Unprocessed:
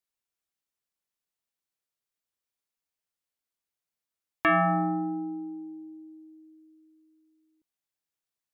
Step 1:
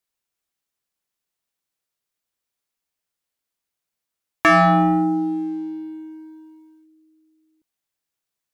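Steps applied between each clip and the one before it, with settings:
leveller curve on the samples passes 1
level +7.5 dB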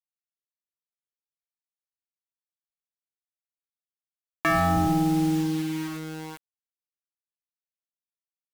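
sub-octave generator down 1 octave, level −2 dB
brickwall limiter −16.5 dBFS, peak gain reduction 8 dB
bit reduction 6 bits
level −1 dB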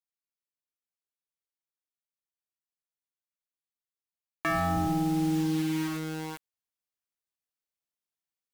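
speech leveller within 4 dB 0.5 s
level −3 dB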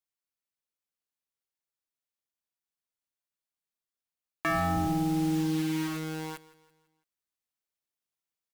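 repeating echo 167 ms, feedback 45%, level −19 dB

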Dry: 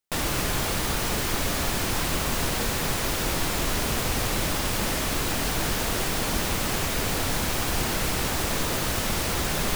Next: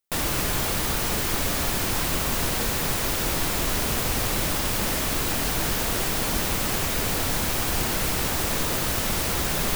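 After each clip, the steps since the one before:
high-shelf EQ 12,000 Hz +6.5 dB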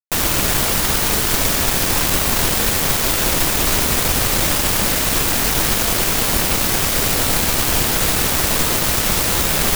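bit reduction 4 bits
level +6.5 dB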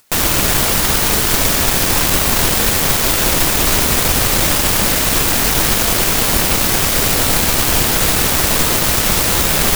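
upward compression, threshold −28 dBFS
level +3 dB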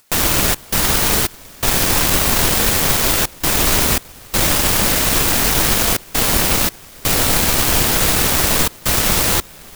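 gate pattern "xxx.xxx..xxxxxx" 83 BPM −24 dB
level −1 dB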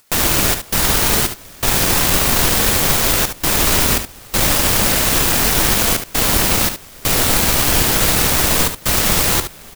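single-tap delay 72 ms −9.5 dB

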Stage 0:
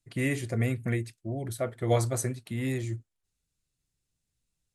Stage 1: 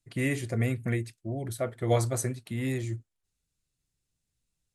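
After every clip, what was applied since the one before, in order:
no processing that can be heard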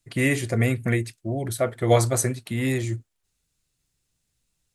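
low-shelf EQ 380 Hz −3.5 dB
level +8.5 dB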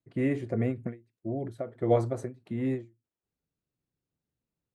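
resonant band-pass 320 Hz, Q 0.67
every ending faded ahead of time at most 200 dB per second
level −3 dB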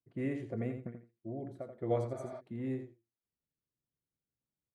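repeating echo 84 ms, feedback 15%, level −8 dB
healed spectral selection 0:02.18–0:02.38, 560–5,800 Hz before
one half of a high-frequency compander decoder only
level −8.5 dB

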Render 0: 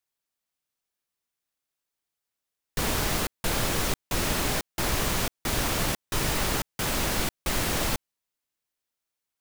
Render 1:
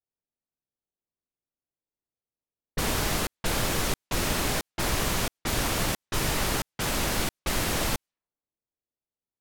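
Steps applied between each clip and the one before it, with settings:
low-pass that shuts in the quiet parts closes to 550 Hz, open at −27 dBFS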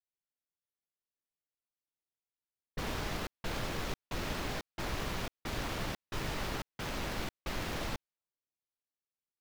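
running median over 5 samples
level −9 dB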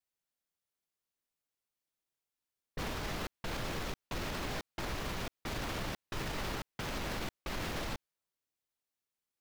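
brickwall limiter −32.5 dBFS, peak gain reduction 9 dB
level +3.5 dB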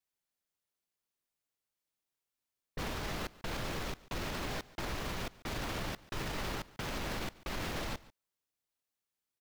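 single-tap delay 143 ms −20.5 dB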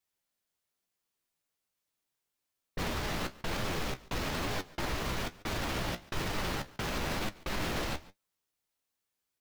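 flanger 1.1 Hz, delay 9.1 ms, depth 9.2 ms, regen +49%
level +8 dB

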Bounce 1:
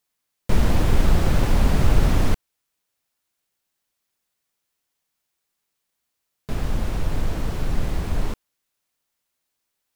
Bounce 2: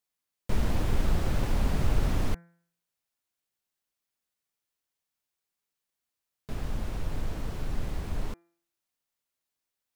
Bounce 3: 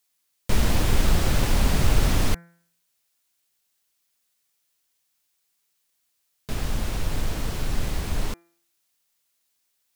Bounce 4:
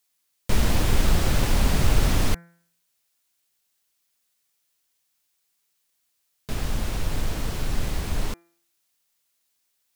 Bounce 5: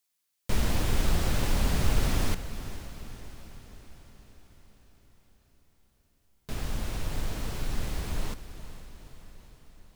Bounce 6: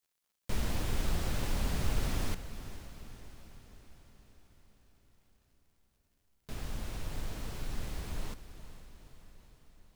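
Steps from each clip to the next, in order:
hum removal 170.2 Hz, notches 14; level −8.5 dB
high-shelf EQ 2,100 Hz +9 dB; level +5.5 dB
no processing that can be heard
feedback delay with all-pass diffusion 460 ms, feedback 59%, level −13 dB; level −5.5 dB
surface crackle 81 per second −57 dBFS; level −6.5 dB

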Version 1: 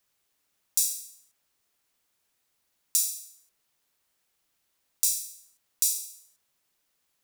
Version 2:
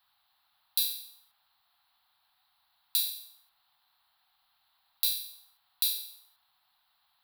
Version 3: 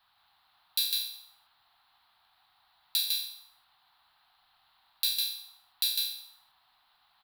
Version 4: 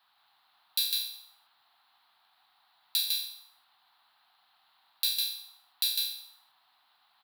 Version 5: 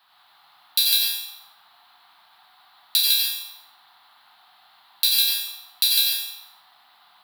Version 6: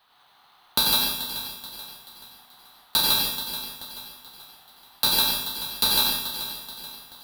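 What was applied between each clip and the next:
drawn EQ curve 110 Hz 0 dB, 520 Hz −16 dB, 750 Hz +14 dB, 1,300 Hz +11 dB, 2,300 Hz +2 dB, 4,100 Hz +14 dB, 6,400 Hz −22 dB, 12,000 Hz +1 dB; level −1.5 dB
low-pass filter 3,500 Hz 6 dB per octave; on a send: single-tap delay 153 ms −3 dB; on the sum: level +6 dB
high-pass filter 200 Hz 12 dB per octave
dense smooth reverb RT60 0.72 s, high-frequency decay 0.7×, pre-delay 75 ms, DRR −2 dB; level +8.5 dB
feedback echo with a high-pass in the loop 432 ms, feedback 44%, level −11 dB; in parallel at −9.5 dB: decimation without filtering 18×; on the sum: level −2.5 dB

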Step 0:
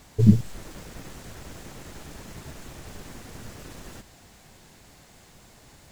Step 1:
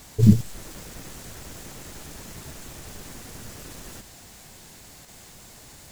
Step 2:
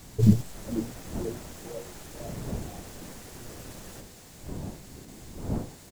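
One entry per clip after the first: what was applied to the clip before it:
high-shelf EQ 4,800 Hz +8.5 dB; in parallel at −1.5 dB: output level in coarse steps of 17 dB; on the sum: level −2 dB
wind on the microphone 190 Hz −36 dBFS; echo with shifted repeats 491 ms, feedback 50%, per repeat +120 Hz, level −14 dB; dynamic equaliser 660 Hz, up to +5 dB, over −47 dBFS, Q 1; level −4.5 dB

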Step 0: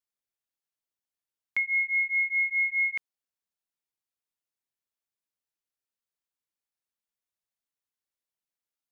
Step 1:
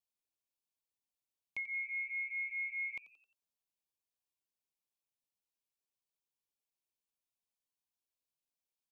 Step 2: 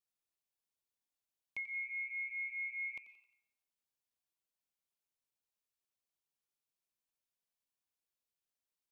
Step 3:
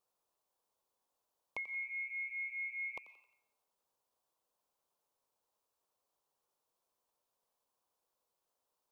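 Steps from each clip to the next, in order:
elliptic band-stop filter 1,100–2,300 Hz; in parallel at −1 dB: brickwall limiter −37 dBFS, peak gain reduction 11 dB; on the sum: echo with shifted repeats 88 ms, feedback 46%, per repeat +130 Hz, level −18 dB; level −8.5 dB
on a send at −16 dB: high-pass filter 860 Hz 24 dB per octave + convolution reverb RT60 0.90 s, pre-delay 85 ms; on the sum: level −1.5 dB
octave-band graphic EQ 500/1,000/2,000 Hz +10/+12/−7 dB; level +4 dB

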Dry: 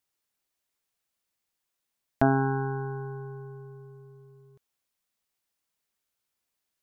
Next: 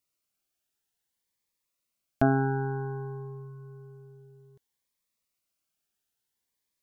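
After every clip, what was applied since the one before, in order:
phaser whose notches keep moving one way rising 0.57 Hz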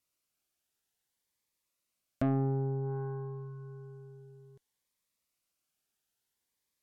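treble cut that deepens with the level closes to 460 Hz, closed at −29 dBFS
harmonic generator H 4 −21 dB, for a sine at −12.5 dBFS
soft clipping −23.5 dBFS, distortion −11 dB

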